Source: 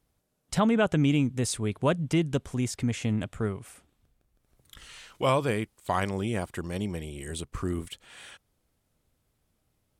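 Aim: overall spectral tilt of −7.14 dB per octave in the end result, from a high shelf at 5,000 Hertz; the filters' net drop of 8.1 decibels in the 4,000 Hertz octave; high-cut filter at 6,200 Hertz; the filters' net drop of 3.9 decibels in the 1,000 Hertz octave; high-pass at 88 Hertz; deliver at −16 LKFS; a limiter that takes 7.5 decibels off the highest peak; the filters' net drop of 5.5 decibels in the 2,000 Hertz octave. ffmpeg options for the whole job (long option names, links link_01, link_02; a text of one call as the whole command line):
ffmpeg -i in.wav -af "highpass=88,lowpass=6200,equalizer=frequency=1000:width_type=o:gain=-3.5,equalizer=frequency=2000:width_type=o:gain=-3.5,equalizer=frequency=4000:width_type=o:gain=-6.5,highshelf=frequency=5000:gain=-6,volume=17dB,alimiter=limit=-4dB:level=0:latency=1" out.wav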